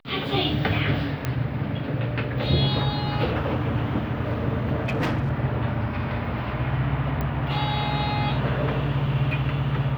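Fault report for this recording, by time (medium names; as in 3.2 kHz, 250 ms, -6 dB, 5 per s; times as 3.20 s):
1.25 s: pop -12 dBFS
4.84–5.33 s: clipped -20.5 dBFS
7.21 s: pop -16 dBFS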